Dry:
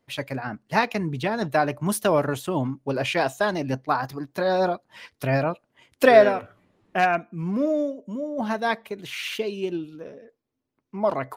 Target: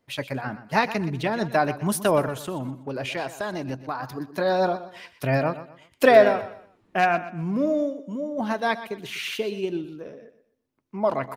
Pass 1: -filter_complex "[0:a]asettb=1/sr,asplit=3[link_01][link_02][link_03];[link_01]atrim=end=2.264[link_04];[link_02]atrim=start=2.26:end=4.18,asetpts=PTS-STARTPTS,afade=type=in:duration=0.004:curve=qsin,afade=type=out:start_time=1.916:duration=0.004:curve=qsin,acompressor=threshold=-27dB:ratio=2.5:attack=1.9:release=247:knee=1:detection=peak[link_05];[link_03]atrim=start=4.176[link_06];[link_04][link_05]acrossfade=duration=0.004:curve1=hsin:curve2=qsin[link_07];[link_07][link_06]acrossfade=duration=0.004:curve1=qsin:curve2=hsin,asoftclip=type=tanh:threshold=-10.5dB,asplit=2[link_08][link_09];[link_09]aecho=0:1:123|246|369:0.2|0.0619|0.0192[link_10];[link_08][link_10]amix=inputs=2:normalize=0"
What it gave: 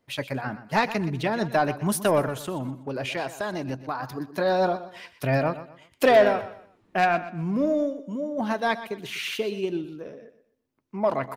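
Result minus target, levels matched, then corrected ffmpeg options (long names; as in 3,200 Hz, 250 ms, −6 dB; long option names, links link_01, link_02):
soft clipping: distortion +16 dB
-filter_complex "[0:a]asettb=1/sr,asplit=3[link_01][link_02][link_03];[link_01]atrim=end=2.264[link_04];[link_02]atrim=start=2.26:end=4.18,asetpts=PTS-STARTPTS,afade=type=in:duration=0.004:curve=qsin,afade=type=out:start_time=1.916:duration=0.004:curve=qsin,acompressor=threshold=-27dB:ratio=2.5:attack=1.9:release=247:knee=1:detection=peak[link_05];[link_03]atrim=start=4.176[link_06];[link_04][link_05]acrossfade=duration=0.004:curve1=hsin:curve2=qsin[link_07];[link_07][link_06]acrossfade=duration=0.004:curve1=qsin:curve2=hsin,asoftclip=type=tanh:threshold=0dB,asplit=2[link_08][link_09];[link_09]aecho=0:1:123|246|369:0.2|0.0619|0.0192[link_10];[link_08][link_10]amix=inputs=2:normalize=0"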